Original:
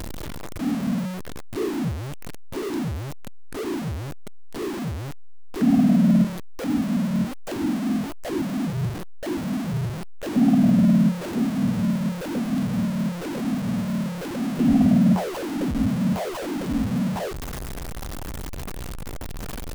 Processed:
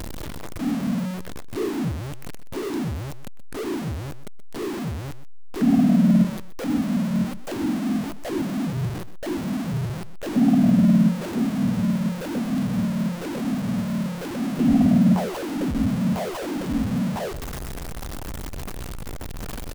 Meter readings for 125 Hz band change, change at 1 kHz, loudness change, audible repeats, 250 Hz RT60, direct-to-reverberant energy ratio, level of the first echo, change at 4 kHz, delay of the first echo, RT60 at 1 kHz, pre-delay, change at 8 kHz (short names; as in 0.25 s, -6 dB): +0.5 dB, 0.0 dB, 0.0 dB, 1, none, none, -15.0 dB, 0.0 dB, 0.126 s, none, none, 0.0 dB